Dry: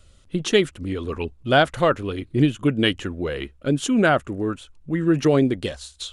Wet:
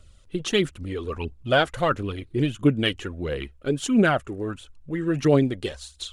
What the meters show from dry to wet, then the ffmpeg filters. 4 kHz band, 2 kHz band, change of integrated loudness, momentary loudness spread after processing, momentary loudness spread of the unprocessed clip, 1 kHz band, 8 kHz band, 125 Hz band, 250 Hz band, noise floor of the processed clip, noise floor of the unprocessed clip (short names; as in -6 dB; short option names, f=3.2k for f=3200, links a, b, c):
-2.5 dB, -3.0 dB, -2.5 dB, 13 LU, 11 LU, -3.5 dB, -2.5 dB, -2.0 dB, -2.5 dB, -53 dBFS, -54 dBFS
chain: -af "aphaser=in_gain=1:out_gain=1:delay=2.7:decay=0.46:speed=1.5:type=triangular,volume=-3.5dB"